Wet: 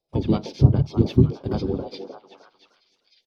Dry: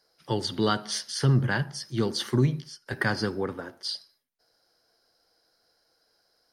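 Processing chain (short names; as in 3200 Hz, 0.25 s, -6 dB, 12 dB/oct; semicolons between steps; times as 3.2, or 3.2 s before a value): gate -51 dBFS, range -12 dB; tilt shelf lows +9 dB; granular stretch 0.5×, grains 0.1 s; envelope phaser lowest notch 270 Hz, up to 1800 Hz, full sweep at -31.5 dBFS; on a send: delay with a stepping band-pass 0.306 s, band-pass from 640 Hz, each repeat 0.7 oct, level -4 dB; on the sum: harmoniser -12 st -10 dB, -5 st -4 dB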